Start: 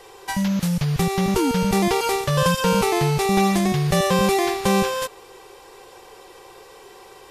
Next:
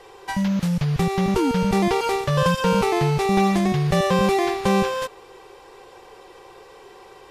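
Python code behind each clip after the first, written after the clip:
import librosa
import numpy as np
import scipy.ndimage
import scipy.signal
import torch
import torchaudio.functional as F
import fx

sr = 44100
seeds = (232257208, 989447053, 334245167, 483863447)

y = fx.lowpass(x, sr, hz=3500.0, slope=6)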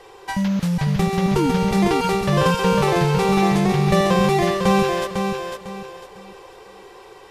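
y = fx.echo_feedback(x, sr, ms=501, feedback_pct=31, wet_db=-5.5)
y = y * librosa.db_to_amplitude(1.0)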